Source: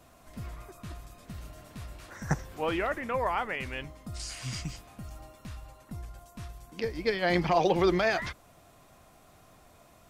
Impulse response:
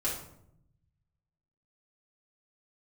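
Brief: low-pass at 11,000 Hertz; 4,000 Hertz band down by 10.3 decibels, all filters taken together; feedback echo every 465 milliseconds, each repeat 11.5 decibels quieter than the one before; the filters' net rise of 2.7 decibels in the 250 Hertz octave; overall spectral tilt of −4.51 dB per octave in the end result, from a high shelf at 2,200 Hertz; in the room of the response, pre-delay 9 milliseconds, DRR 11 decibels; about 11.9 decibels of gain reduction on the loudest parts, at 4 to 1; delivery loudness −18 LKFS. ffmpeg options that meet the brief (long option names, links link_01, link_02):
-filter_complex "[0:a]lowpass=11000,equalizer=frequency=250:width_type=o:gain=5,highshelf=frequency=2200:gain=-9,equalizer=frequency=4000:width_type=o:gain=-5,acompressor=threshold=-34dB:ratio=4,aecho=1:1:465|930|1395:0.266|0.0718|0.0194,asplit=2[link_01][link_02];[1:a]atrim=start_sample=2205,adelay=9[link_03];[link_02][link_03]afir=irnorm=-1:irlink=0,volume=-16.5dB[link_04];[link_01][link_04]amix=inputs=2:normalize=0,volume=21.5dB"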